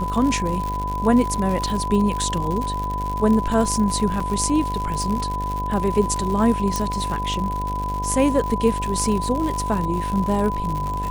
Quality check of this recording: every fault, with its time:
buzz 50 Hz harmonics 18 -28 dBFS
crackle 140/s -25 dBFS
tone 1000 Hz -25 dBFS
4.2 gap 4.3 ms
6.76 pop

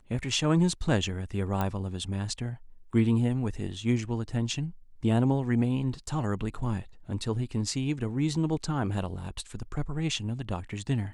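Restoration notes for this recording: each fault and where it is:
1.61 pop -16 dBFS

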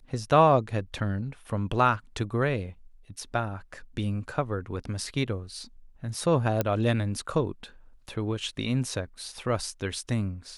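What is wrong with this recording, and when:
6.61 pop -11 dBFS

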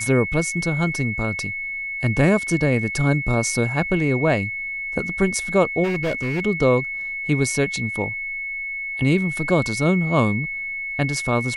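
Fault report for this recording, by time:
tone 2200 Hz -26 dBFS
5.83–6.41 clipped -19 dBFS

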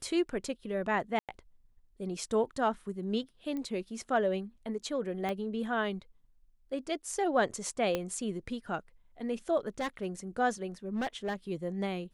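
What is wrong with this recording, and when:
1.19–1.29 gap 97 ms
3.57 pop -26 dBFS
5.29 pop -21 dBFS
7.95 pop -17 dBFS
9.8–10.07 clipped -29 dBFS
10.95–11.35 clipped -29.5 dBFS

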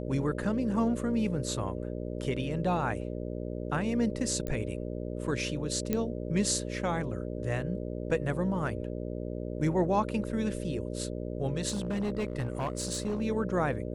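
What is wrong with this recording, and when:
buzz 60 Hz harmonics 10 -36 dBFS
4.47 pop -21 dBFS
5.93 pop -15 dBFS
11.68–13.22 clipped -27 dBFS

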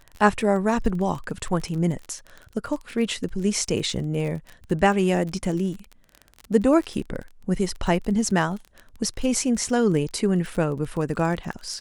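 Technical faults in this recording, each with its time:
crackle 28/s -30 dBFS

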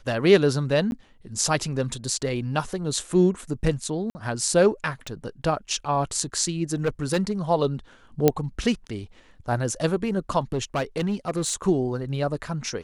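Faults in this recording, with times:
0.91–0.92 gap 11 ms
4.1–4.15 gap 50 ms
5.07 pop
6.73–7.32 clipped -18 dBFS
8.28 pop -4 dBFS
10.53–11.55 clipped -20.5 dBFS

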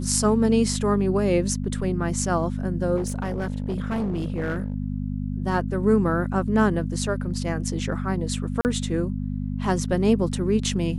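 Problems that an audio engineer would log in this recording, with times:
hum 50 Hz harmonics 5 -28 dBFS
2.96–4.74 clipped -22 dBFS
8.61–8.65 gap 39 ms

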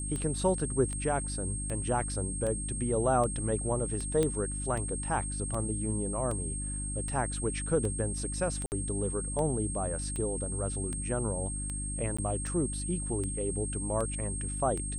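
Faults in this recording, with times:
hum 50 Hz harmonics 6 -37 dBFS
tick 78 rpm -24 dBFS
tone 8500 Hz -37 dBFS
4.23 pop -16 dBFS
8.66–8.72 gap 59 ms
12.17–12.19 gap 15 ms

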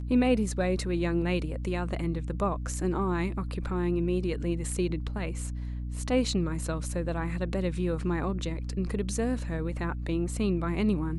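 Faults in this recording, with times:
hum 60 Hz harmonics 5 -34 dBFS

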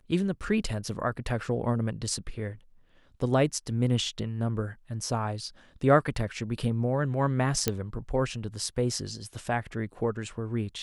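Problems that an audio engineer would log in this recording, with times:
7.68 pop -9 dBFS

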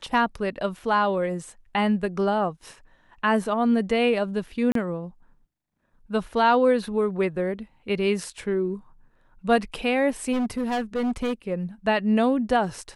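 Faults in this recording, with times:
4.72–4.75 gap 33 ms
10.32–11.33 clipped -22 dBFS

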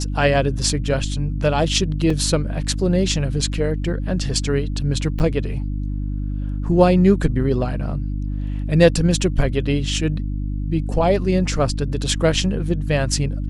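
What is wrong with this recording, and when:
hum 50 Hz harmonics 6 -24 dBFS
2.1 gap 3.5 ms
5.19–5.2 gap 9.3 ms

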